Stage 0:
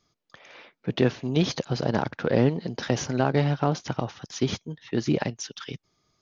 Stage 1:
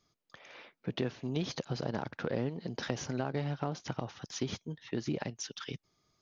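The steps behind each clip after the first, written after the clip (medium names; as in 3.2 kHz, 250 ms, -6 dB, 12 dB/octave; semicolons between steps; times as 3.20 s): compression 2.5:1, threshold -29 dBFS, peak gain reduction 10 dB; trim -4 dB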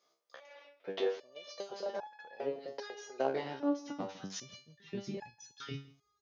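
high-pass sweep 520 Hz -> 60 Hz, 3.14–5.43 s; delay 163 ms -20 dB; resonator arpeggio 2.5 Hz 67–850 Hz; trim +8 dB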